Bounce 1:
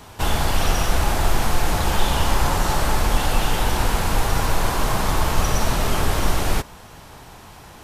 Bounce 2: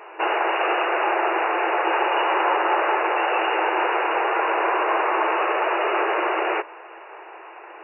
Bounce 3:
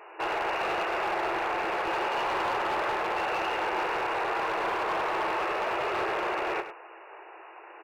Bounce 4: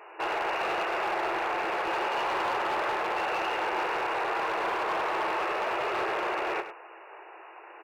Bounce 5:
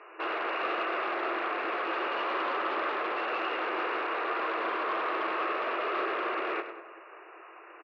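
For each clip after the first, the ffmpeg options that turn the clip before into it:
-af "afftfilt=real='re*between(b*sr/4096,320,2900)':imag='im*between(b*sr/4096,320,2900)':win_size=4096:overlap=0.75,volume=4.5dB"
-af "asoftclip=type=hard:threshold=-19dB,aecho=1:1:101:0.299,volume=-6.5dB"
-af "lowshelf=f=160:g=-5.5"
-filter_complex "[0:a]highpass=f=230:w=0.5412,highpass=f=230:w=1.3066,equalizer=f=290:t=q:w=4:g=7,equalizer=f=860:t=q:w=4:g=-9,equalizer=f=1.2k:t=q:w=4:g=6,lowpass=f=4k:w=0.5412,lowpass=f=4k:w=1.3066,asplit=2[a][b];[b]adelay=196,lowpass=f=1.3k:p=1,volume=-12dB,asplit=2[c][d];[d]adelay=196,lowpass=f=1.3k:p=1,volume=0.38,asplit=2[e][f];[f]adelay=196,lowpass=f=1.3k:p=1,volume=0.38,asplit=2[g][h];[h]adelay=196,lowpass=f=1.3k:p=1,volume=0.38[i];[a][c][e][g][i]amix=inputs=5:normalize=0,volume=-2dB"

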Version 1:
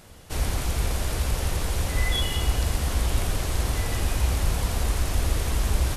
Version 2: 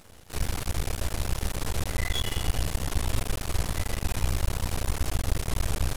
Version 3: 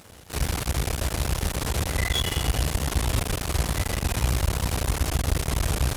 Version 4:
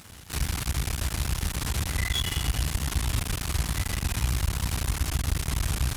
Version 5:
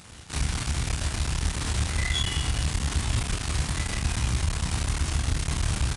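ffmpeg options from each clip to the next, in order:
-af "aeval=exprs='max(val(0),0)':c=same"
-af "highpass=43,volume=5dB"
-filter_complex "[0:a]equalizer=f=520:t=o:w=1.3:g=-10,asplit=2[a][b];[b]acompressor=threshold=-33dB:ratio=6,volume=2dB[c];[a][c]amix=inputs=2:normalize=0,volume=-4.5dB"
-filter_complex "[0:a]asplit=2[a][b];[b]adelay=27,volume=-4.5dB[c];[a][c]amix=inputs=2:normalize=0,aresample=22050,aresample=44100"

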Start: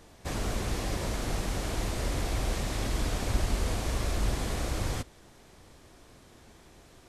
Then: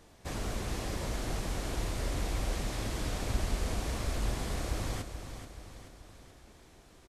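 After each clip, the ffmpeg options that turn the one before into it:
-af "aecho=1:1:431|862|1293|1724|2155|2586:0.335|0.171|0.0871|0.0444|0.0227|0.0116,volume=-4dB"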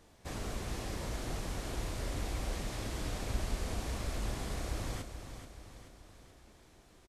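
-filter_complex "[0:a]asplit=2[a][b];[b]adelay=33,volume=-13dB[c];[a][c]amix=inputs=2:normalize=0,volume=-3.5dB"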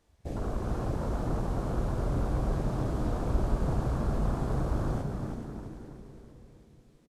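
-filter_complex "[0:a]afwtdn=0.00794,asplit=6[a][b][c][d][e][f];[b]adelay=327,afreqshift=88,volume=-6.5dB[g];[c]adelay=654,afreqshift=176,volume=-13.8dB[h];[d]adelay=981,afreqshift=264,volume=-21.2dB[i];[e]adelay=1308,afreqshift=352,volume=-28.5dB[j];[f]adelay=1635,afreqshift=440,volume=-35.8dB[k];[a][g][h][i][j][k]amix=inputs=6:normalize=0,volume=7dB"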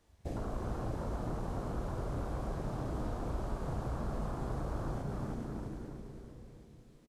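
-filter_complex "[0:a]acrossover=split=410|1700[a][b][c];[a]acompressor=threshold=-36dB:ratio=4[d];[b]acompressor=threshold=-43dB:ratio=4[e];[c]acompressor=threshold=-59dB:ratio=4[f];[d][e][f]amix=inputs=3:normalize=0,asplit=2[g][h];[h]adelay=34,volume=-12dB[i];[g][i]amix=inputs=2:normalize=0"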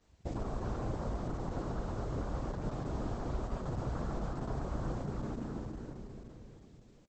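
-af "volume=1dB" -ar 48000 -c:a libopus -b:a 10k

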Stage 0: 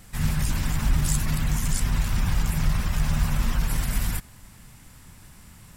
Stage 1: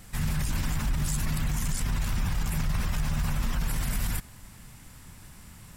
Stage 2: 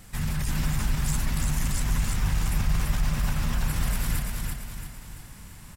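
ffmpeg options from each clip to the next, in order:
-af "alimiter=limit=-20dB:level=0:latency=1:release=29"
-af "aecho=1:1:338|676|1014|1352|1690|2028:0.708|0.326|0.15|0.0689|0.0317|0.0146"

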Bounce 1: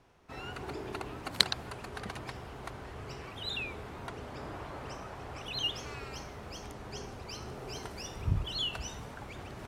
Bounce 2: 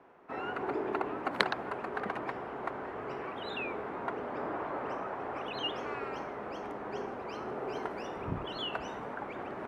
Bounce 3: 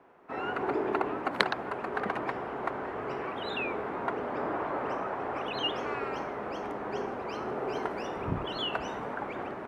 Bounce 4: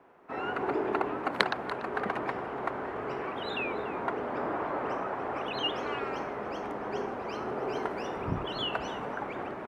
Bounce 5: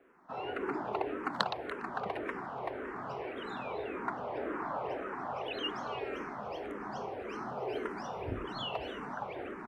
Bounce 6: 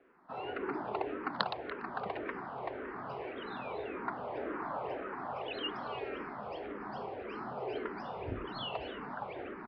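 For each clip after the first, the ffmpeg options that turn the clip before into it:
-filter_complex "[0:a]acrossover=split=210 2100:gain=0.0708 1 0.0631[a][b][c];[a][b][c]amix=inputs=3:normalize=0,volume=8dB"
-af "dynaudnorm=f=220:g=3:m=4dB"
-af "aecho=1:1:289:0.15"
-filter_complex "[0:a]asplit=2[a][b];[b]afreqshift=-1.8[c];[a][c]amix=inputs=2:normalize=1,volume=-1.5dB"
-af "aresample=11025,aresample=44100,volume=-1.5dB"

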